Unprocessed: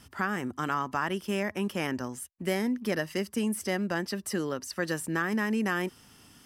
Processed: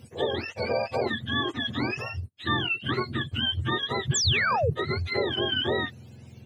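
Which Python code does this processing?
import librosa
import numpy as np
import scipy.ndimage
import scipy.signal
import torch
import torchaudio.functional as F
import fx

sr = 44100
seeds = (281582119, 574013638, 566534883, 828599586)

y = fx.octave_mirror(x, sr, pivot_hz=820.0)
y = fx.spec_paint(y, sr, seeds[0], shape='fall', start_s=4.14, length_s=0.56, low_hz=410.0, high_hz=8000.0, level_db=-29.0)
y = y * 10.0 ** (4.0 / 20.0)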